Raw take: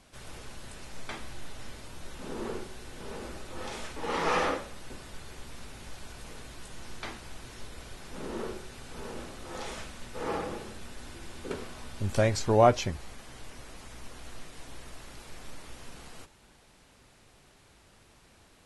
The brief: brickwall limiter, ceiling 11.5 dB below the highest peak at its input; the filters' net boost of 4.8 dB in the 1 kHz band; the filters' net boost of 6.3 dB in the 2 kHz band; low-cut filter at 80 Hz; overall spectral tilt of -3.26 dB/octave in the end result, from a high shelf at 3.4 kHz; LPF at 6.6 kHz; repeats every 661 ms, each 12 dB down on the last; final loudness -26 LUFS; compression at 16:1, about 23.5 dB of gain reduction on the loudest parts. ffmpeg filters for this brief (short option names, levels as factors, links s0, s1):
-af "highpass=80,lowpass=6600,equalizer=f=1000:t=o:g=5,equalizer=f=2000:t=o:g=5,highshelf=f=3400:g=4.5,acompressor=threshold=0.0178:ratio=16,alimiter=level_in=2.51:limit=0.0631:level=0:latency=1,volume=0.398,aecho=1:1:661|1322|1983:0.251|0.0628|0.0157,volume=6.68"